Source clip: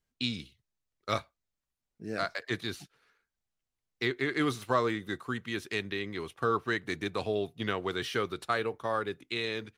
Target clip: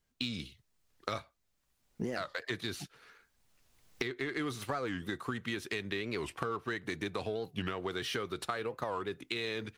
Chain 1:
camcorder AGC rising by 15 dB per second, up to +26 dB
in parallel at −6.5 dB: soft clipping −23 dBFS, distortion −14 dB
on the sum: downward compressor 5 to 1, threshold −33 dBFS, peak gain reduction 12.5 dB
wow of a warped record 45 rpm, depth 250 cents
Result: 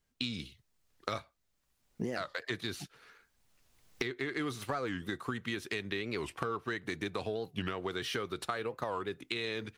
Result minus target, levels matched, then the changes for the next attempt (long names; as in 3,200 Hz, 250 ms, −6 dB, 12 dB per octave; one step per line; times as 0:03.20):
soft clipping: distortion −8 dB
change: soft clipping −34 dBFS, distortion −5 dB